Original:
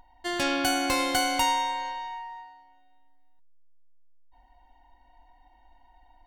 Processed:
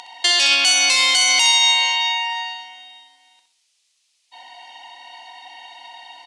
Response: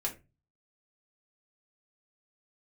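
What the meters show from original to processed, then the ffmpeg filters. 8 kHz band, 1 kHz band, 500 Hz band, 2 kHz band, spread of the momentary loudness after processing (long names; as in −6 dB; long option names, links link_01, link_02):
+16.0 dB, +2.5 dB, −3.5 dB, +13.0 dB, 13 LU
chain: -af "acompressor=threshold=-40dB:ratio=6,aexciter=amount=7.8:drive=1.9:freq=2200,asoftclip=type=tanh:threshold=-18.5dB,highpass=660,lowpass=6000,aecho=1:1:64|128|192|256:0.398|0.155|0.0606|0.0236,alimiter=level_in=25dB:limit=-1dB:release=50:level=0:latency=1,volume=-5.5dB" -ar 24000 -c:a aac -b:a 64k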